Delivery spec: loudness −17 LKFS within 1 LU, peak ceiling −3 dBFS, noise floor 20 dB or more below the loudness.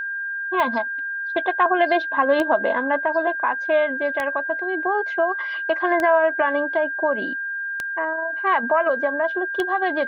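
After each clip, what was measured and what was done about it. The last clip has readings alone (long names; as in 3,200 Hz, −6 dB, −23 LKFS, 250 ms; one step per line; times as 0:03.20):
number of clicks 6; interfering tone 1,600 Hz; level of the tone −25 dBFS; integrated loudness −21.5 LKFS; sample peak −6.5 dBFS; target loudness −17.0 LKFS
→ click removal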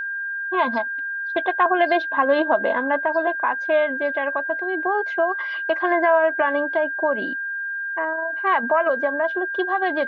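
number of clicks 0; interfering tone 1,600 Hz; level of the tone −25 dBFS
→ notch filter 1,600 Hz, Q 30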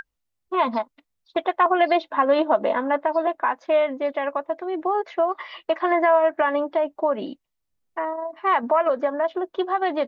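interfering tone none found; integrated loudness −23.0 LKFS; sample peak −7.5 dBFS; target loudness −17.0 LKFS
→ level +6 dB
brickwall limiter −3 dBFS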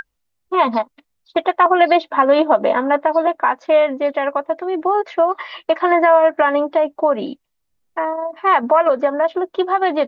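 integrated loudness −17.0 LKFS; sample peak −3.0 dBFS; background noise floor −72 dBFS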